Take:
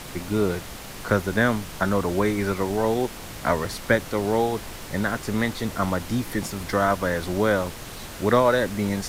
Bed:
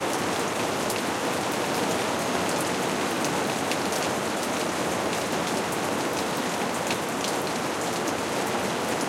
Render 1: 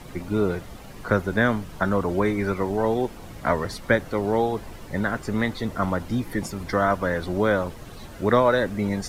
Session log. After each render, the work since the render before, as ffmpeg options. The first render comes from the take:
-af "afftdn=nr=11:nf=-38"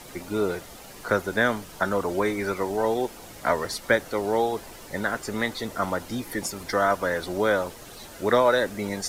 -af "bass=f=250:g=-10,treble=f=4k:g=7,bandreject=f=1.1k:w=24"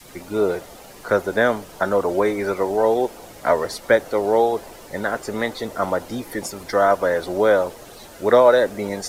-af "adynamicequalizer=threshold=0.0158:dfrequency=560:dqfactor=0.84:tfrequency=560:tqfactor=0.84:attack=5:release=100:ratio=0.375:range=4:mode=boostabove:tftype=bell"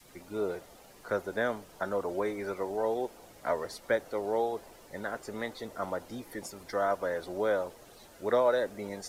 -af "volume=-12.5dB"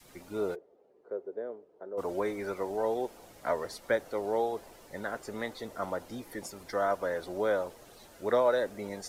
-filter_complex "[0:a]asplit=3[a][b][c];[a]afade=t=out:st=0.54:d=0.02[d];[b]bandpass=f=420:t=q:w=4.2,afade=t=in:st=0.54:d=0.02,afade=t=out:st=1.97:d=0.02[e];[c]afade=t=in:st=1.97:d=0.02[f];[d][e][f]amix=inputs=3:normalize=0"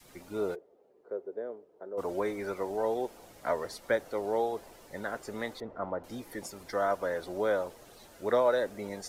-filter_complex "[0:a]asettb=1/sr,asplit=3[a][b][c];[a]atrim=end=5.604[d];[b]atrim=start=5.6:end=6.04,asetpts=PTS-STARTPTS,afade=t=in:d=0.004:c=qsin,afade=t=out:st=0.436:d=0.004:c=qsin,lowpass=1.3k[e];[c]atrim=start=6.036[f];[d][e]acrossfade=d=0.004:c1=hsin:c2=qsin[g];[g][f]acrossfade=d=0.004:c1=qsin:c2=hsin"

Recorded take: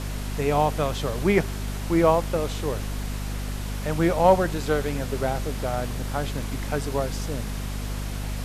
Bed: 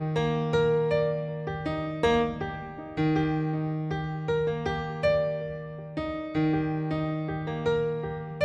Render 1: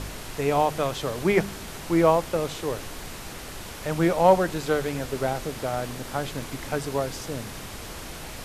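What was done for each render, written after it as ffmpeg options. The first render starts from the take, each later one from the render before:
-af "bandreject=f=50:t=h:w=4,bandreject=f=100:t=h:w=4,bandreject=f=150:t=h:w=4,bandreject=f=200:t=h:w=4,bandreject=f=250:t=h:w=4"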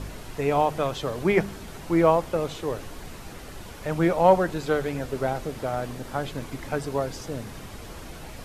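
-af "afftdn=nr=7:nf=-39"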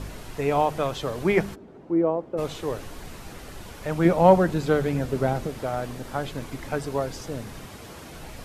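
-filter_complex "[0:a]asplit=3[a][b][c];[a]afade=t=out:st=1.54:d=0.02[d];[b]bandpass=f=340:t=q:w=1.3,afade=t=in:st=1.54:d=0.02,afade=t=out:st=2.37:d=0.02[e];[c]afade=t=in:st=2.37:d=0.02[f];[d][e][f]amix=inputs=3:normalize=0,asettb=1/sr,asplit=3[g][h][i];[g]atrim=end=4.054[j];[h]atrim=start=4.05:end=5.47,asetpts=PTS-STARTPTS,afade=t=in:d=0.004:c=qsin,afade=t=out:st=1.416:d=0.004:c=qsin,equalizer=f=160:t=o:w=2.2:g=7[k];[i]atrim=start=5.466[l];[j][k]acrossfade=d=0.004:c1=hsin:c2=qsin[m];[m][l]acrossfade=d=0.004:c1=qsin:c2=hsin,asettb=1/sr,asplit=3[n][o][p];[n]atrim=end=7.654[q];[o]atrim=start=7.65:end=8.13,asetpts=PTS-STARTPTS,afade=t=in:d=0.004:c=qsin,afade=t=out:st=0.476:d=0.004:c=qsin,highpass=86[r];[p]atrim=start=8.126[s];[q][r]acrossfade=d=0.004:c1=hsin:c2=qsin[t];[t][s]acrossfade=d=0.004:c1=qsin:c2=hsin"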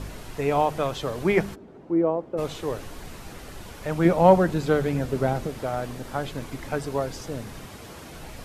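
-af anull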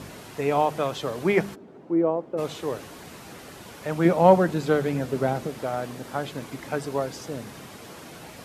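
-af "highpass=130"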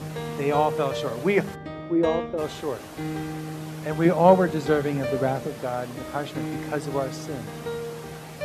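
-filter_complex "[1:a]volume=-6dB[a];[0:a][a]amix=inputs=2:normalize=0"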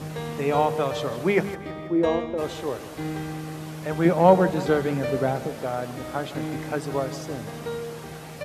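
-af "aecho=1:1:162|324|486|648|810:0.178|0.0996|0.0558|0.0312|0.0175"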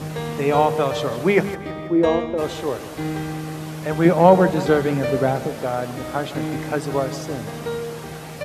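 -af "volume=4.5dB,alimiter=limit=-1dB:level=0:latency=1"

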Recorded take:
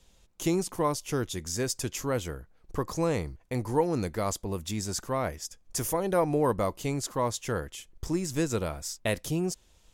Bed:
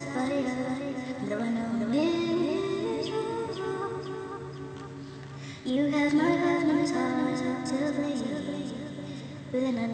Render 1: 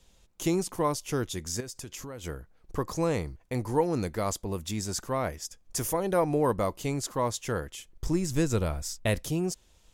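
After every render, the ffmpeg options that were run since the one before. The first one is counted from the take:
-filter_complex "[0:a]asettb=1/sr,asplit=3[a][b][c];[a]atrim=end=1.604[d];[b]atrim=start=1.6:end=2.24,asetpts=PTS-STARTPTS,afade=t=in:d=0.004:c=qsin,afade=t=out:st=0.636:d=0.004:c=qsin,acompressor=threshold=-36dB:ratio=10:attack=3.2:release=140:knee=1:detection=peak[e];[c]atrim=start=2.236[f];[d][e]acrossfade=d=0.004:c1=hsin:c2=qsin[g];[g][f]acrossfade=d=0.004:c1=qsin:c2=hsin,asettb=1/sr,asplit=3[h][i][j];[h]atrim=end=8.044[k];[i]atrim=start=8.04:end=9.24,asetpts=PTS-STARTPTS,afade=t=in:d=0.004:c=qsin,afade=t=out:st=1.196:d=0.004:c=qsin,lowshelf=f=110:g=11[l];[j]atrim=start=9.236[m];[k][l]acrossfade=d=0.004:c1=hsin:c2=qsin[n];[n][m]acrossfade=d=0.004:c1=qsin:c2=hsin"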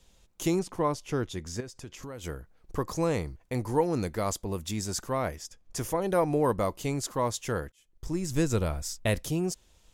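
-filter_complex "[0:a]asettb=1/sr,asplit=3[a][b][c];[a]atrim=end=0.594[d];[b]atrim=start=0.59:end=2.03,asetpts=PTS-STARTPTS,afade=t=in:d=0.004:c=qsin,afade=t=out:st=1.436:d=0.004:c=qsin,aemphasis=mode=reproduction:type=50kf[e];[c]atrim=start=2.026[f];[d][e]acrossfade=d=0.004:c1=hsin:c2=qsin[g];[g][f]acrossfade=d=0.004:c1=qsin:c2=hsin,asettb=1/sr,asplit=3[h][i][j];[h]atrim=end=5.424[k];[i]atrim=start=5.42:end=6.02,asetpts=PTS-STARTPTS,afade=t=in:d=0.004:c=qsin,afade=t=out:st=0.596:d=0.004:c=qsin,highshelf=f=6.7k:g=-9.5[l];[j]atrim=start=6.016[m];[k][l]acrossfade=d=0.004:c1=hsin:c2=qsin[n];[n][m]acrossfade=d=0.004:c1=qsin:c2=hsin,asplit=2[o][p];[o]atrim=end=7.72,asetpts=PTS-STARTPTS,afade=t=out:st=7.716:d=0.004:c=hsin[q];[p]atrim=start=7.72,asetpts=PTS-STARTPTS,afade=t=in:d=0.68[r];[q][r]concat=n=2:v=0:a=1"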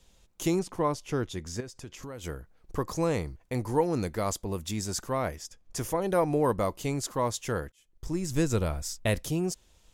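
-af anull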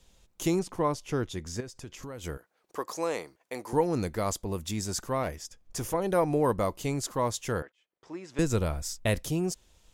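-filter_complex "[0:a]asettb=1/sr,asplit=3[a][b][c];[a]atrim=end=2.374[d];[b]atrim=start=2.37:end=3.73,asetpts=PTS-STARTPTS,afade=t=in:d=0.004:c=qsin,afade=t=out:st=1.356:d=0.004:c=qsin,highpass=430[e];[c]atrim=start=3.726[f];[d][e]acrossfade=d=0.004:c1=hsin:c2=qsin[g];[g][f]acrossfade=d=0.004:c1=qsin:c2=hsin,asettb=1/sr,asplit=3[h][i][j];[h]atrim=end=5.234[k];[i]atrim=start=5.23:end=5.94,asetpts=PTS-STARTPTS,afade=t=in:d=0.004:c=qsin,afade=t=out:st=0.706:d=0.004:c=qsin,aeval=exprs='clip(val(0),-1,0.0422)':c=same[l];[j]atrim=start=5.936[m];[k][l]acrossfade=d=0.004:c1=hsin:c2=qsin[n];[n][m]acrossfade=d=0.004:c1=qsin:c2=hsin,asettb=1/sr,asplit=3[o][p][q];[o]atrim=end=7.624[r];[p]atrim=start=7.62:end=8.39,asetpts=PTS-STARTPTS,afade=t=in:d=0.004:c=qsin,afade=t=out:st=0.766:d=0.004:c=qsin,highpass=480,lowpass=2.8k[s];[q]atrim=start=8.386[t];[r][s]acrossfade=d=0.004:c1=hsin:c2=qsin[u];[u][t]acrossfade=d=0.004:c1=qsin:c2=hsin"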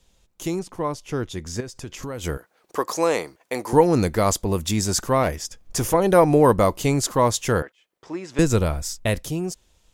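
-af "dynaudnorm=f=300:g=11:m=11.5dB"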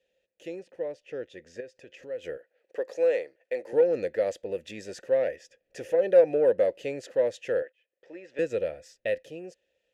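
-filter_complex "[0:a]asplit=3[a][b][c];[a]bandpass=f=530:t=q:w=8,volume=0dB[d];[b]bandpass=f=1.84k:t=q:w=8,volume=-6dB[e];[c]bandpass=f=2.48k:t=q:w=8,volume=-9dB[f];[d][e][f]amix=inputs=3:normalize=0,asplit=2[g][h];[h]asoftclip=type=tanh:threshold=-23.5dB,volume=-9.5dB[i];[g][i]amix=inputs=2:normalize=0"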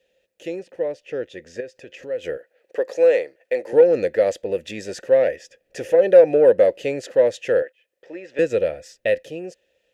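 -af "volume=8.5dB,alimiter=limit=-3dB:level=0:latency=1"

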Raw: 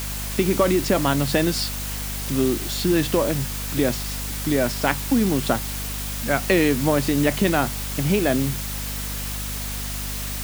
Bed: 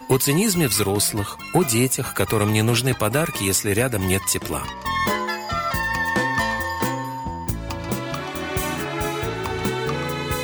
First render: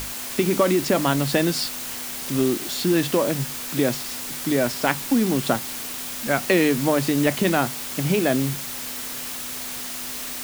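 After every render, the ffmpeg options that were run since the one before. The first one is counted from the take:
-af "bandreject=f=50:t=h:w=6,bandreject=f=100:t=h:w=6,bandreject=f=150:t=h:w=6,bandreject=f=200:t=h:w=6"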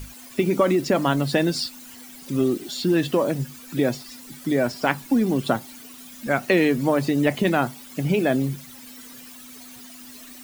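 -af "afftdn=nr=15:nf=-32"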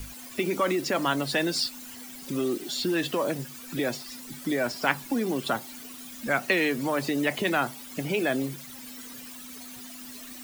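-filter_complex "[0:a]acrossover=split=290|980|3800[a][b][c][d];[a]acompressor=threshold=-37dB:ratio=6[e];[b]alimiter=limit=-23dB:level=0:latency=1[f];[e][f][c][d]amix=inputs=4:normalize=0"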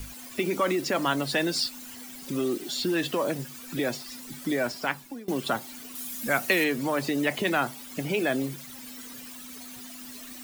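-filter_complex "[0:a]asettb=1/sr,asplit=3[a][b][c];[a]atrim=end=5.954[d];[b]atrim=start=5.95:end=6.64,asetpts=PTS-STARTPTS,afade=t=in:d=0.004:c=qsin,afade=t=out:st=0.686:d=0.004:c=qsin,equalizer=f=14k:w=0.39:g=10[e];[c]atrim=start=6.636[f];[d][e]acrossfade=d=0.004:c1=hsin:c2=qsin[g];[g][f]acrossfade=d=0.004:c1=qsin:c2=hsin,asplit=2[h][i];[h]atrim=end=5.28,asetpts=PTS-STARTPTS,afade=t=out:st=4.61:d=0.67:silence=0.0841395[j];[i]atrim=start=5.28,asetpts=PTS-STARTPTS,afade=t=in:d=0.004:c=hsin:silence=0.0841395[k];[j][k]concat=n=2:v=0:a=1"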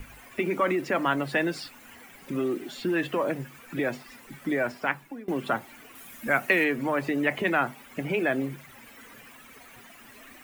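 -af "highshelf=f=3.1k:t=q:w=1.5:g=-10.5,bandreject=f=50:t=h:w=6,bandreject=f=100:t=h:w=6,bandreject=f=150:t=h:w=6,bandreject=f=200:t=h:w=6,bandreject=f=250:t=h:w=6"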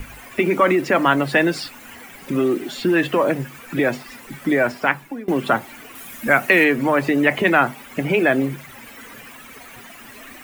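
-af "volume=9dB,alimiter=limit=-2dB:level=0:latency=1"

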